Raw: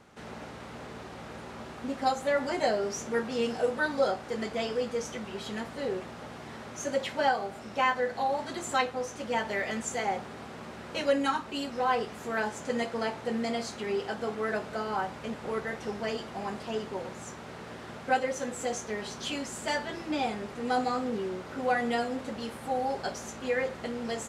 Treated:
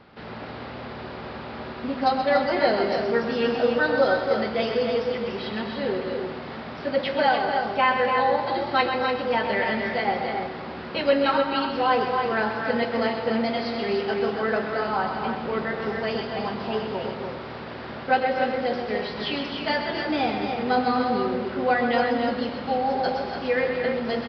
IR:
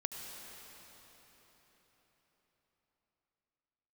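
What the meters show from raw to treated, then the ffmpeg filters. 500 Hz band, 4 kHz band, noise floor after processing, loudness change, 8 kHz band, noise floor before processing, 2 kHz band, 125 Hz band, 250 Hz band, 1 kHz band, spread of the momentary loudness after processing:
+7.5 dB, +7.0 dB, −36 dBFS, +7.0 dB, below −20 dB, −44 dBFS, +7.0 dB, +7.0 dB, +7.0 dB, +7.0 dB, 12 LU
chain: -filter_complex "[0:a]aecho=1:1:128.3|253.6|291.5:0.398|0.251|0.501,asplit=2[link_01][link_02];[1:a]atrim=start_sample=2205,afade=type=out:start_time=0.45:duration=0.01,atrim=end_sample=20286[link_03];[link_02][link_03]afir=irnorm=-1:irlink=0,volume=0dB[link_04];[link_01][link_04]amix=inputs=2:normalize=0,aresample=11025,aresample=44100"

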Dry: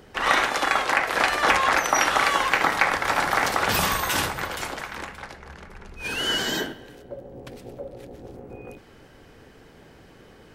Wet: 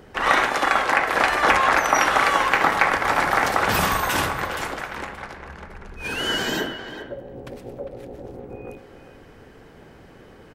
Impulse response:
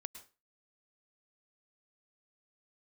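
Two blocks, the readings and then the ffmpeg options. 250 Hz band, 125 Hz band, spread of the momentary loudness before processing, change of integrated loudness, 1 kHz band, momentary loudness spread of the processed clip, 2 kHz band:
+3.0 dB, +3.0 dB, 21 LU, +2.0 dB, +3.0 dB, 20 LU, +2.0 dB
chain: -filter_complex "[0:a]asplit=2[link_01][link_02];[link_02]adelay=400,highpass=300,lowpass=3400,asoftclip=type=hard:threshold=-12dB,volume=-10dB[link_03];[link_01][link_03]amix=inputs=2:normalize=0,asplit=2[link_04][link_05];[1:a]atrim=start_sample=2205,lowpass=2800[link_06];[link_05][link_06]afir=irnorm=-1:irlink=0,volume=-0.5dB[link_07];[link_04][link_07]amix=inputs=2:normalize=0,volume=-1dB"

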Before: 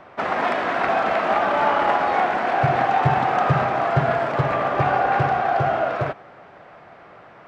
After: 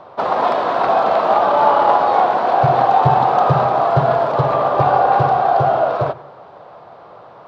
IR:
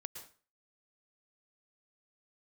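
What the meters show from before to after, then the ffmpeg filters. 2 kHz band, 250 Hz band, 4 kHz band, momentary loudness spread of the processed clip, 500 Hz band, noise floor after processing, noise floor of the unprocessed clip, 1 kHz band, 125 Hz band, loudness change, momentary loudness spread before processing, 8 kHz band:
−3.0 dB, +2.0 dB, +2.0 dB, 4 LU, +6.5 dB, −41 dBFS, −46 dBFS, +6.5 dB, +3.5 dB, +5.5 dB, 4 LU, can't be measured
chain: -filter_complex "[0:a]equalizer=frequency=125:width_type=o:width=1:gain=6,equalizer=frequency=500:width_type=o:width=1:gain=8,equalizer=frequency=1000:width_type=o:width=1:gain=10,equalizer=frequency=2000:width_type=o:width=1:gain=-8,equalizer=frequency=4000:width_type=o:width=1:gain=12,asplit=2[link_01][link_02];[1:a]atrim=start_sample=2205,lowpass=2500[link_03];[link_02][link_03]afir=irnorm=-1:irlink=0,volume=-7dB[link_04];[link_01][link_04]amix=inputs=2:normalize=0,volume=-4.5dB"

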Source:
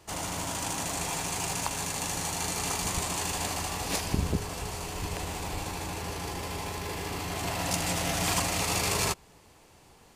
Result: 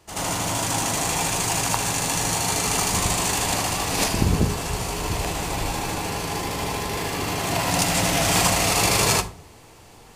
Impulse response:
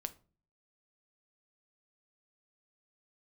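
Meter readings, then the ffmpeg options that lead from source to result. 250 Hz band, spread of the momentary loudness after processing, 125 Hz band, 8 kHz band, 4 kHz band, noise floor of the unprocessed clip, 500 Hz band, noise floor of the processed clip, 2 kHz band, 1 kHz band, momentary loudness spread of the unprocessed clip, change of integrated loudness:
+8.5 dB, 8 LU, +8.0 dB, +8.5 dB, +8.5 dB, −57 dBFS, +9.0 dB, −48 dBFS, +8.5 dB, +8.5 dB, 8 LU, +8.5 dB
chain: -filter_complex "[0:a]asplit=2[link_01][link_02];[1:a]atrim=start_sample=2205,asetrate=32634,aresample=44100,adelay=79[link_03];[link_02][link_03]afir=irnorm=-1:irlink=0,volume=8.5dB[link_04];[link_01][link_04]amix=inputs=2:normalize=0"

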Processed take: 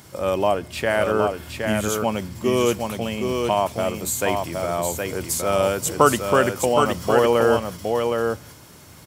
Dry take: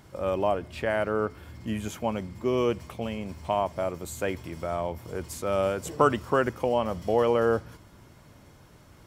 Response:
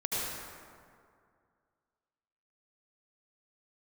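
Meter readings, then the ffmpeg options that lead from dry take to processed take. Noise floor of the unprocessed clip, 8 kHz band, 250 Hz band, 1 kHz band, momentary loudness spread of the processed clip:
−53 dBFS, +16.0 dB, +6.5 dB, +7.0 dB, 7 LU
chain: -af "highpass=73,highshelf=frequency=3800:gain=12,aecho=1:1:767:0.596,volume=5dB"

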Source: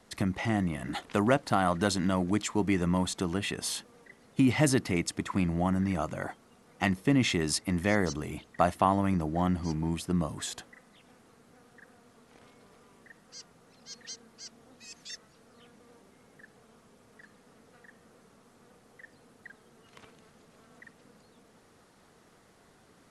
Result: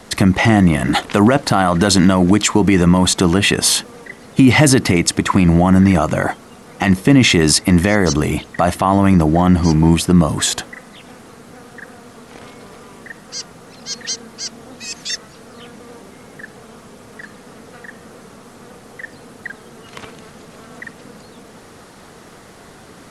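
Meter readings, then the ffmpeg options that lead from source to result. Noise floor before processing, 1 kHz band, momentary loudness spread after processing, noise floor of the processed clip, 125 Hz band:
−61 dBFS, +12.5 dB, 17 LU, −42 dBFS, +16.5 dB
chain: -af "alimiter=level_in=20.5dB:limit=-1dB:release=50:level=0:latency=1,volume=-1dB"

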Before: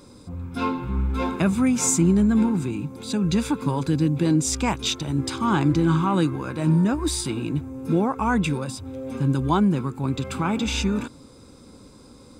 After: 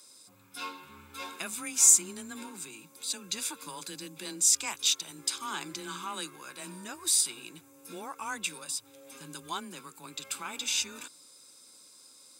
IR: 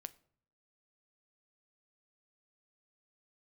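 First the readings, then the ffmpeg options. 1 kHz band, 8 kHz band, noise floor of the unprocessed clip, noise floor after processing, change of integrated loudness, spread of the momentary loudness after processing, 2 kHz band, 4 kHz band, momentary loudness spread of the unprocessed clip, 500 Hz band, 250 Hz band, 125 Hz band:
−13.0 dB, +4.0 dB, −48 dBFS, −57 dBFS, −5.5 dB, 21 LU, −7.0 dB, −1.0 dB, 10 LU, −19.0 dB, −25.0 dB, −31.5 dB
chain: -af "aderivative,afreqshift=19,volume=4dB"

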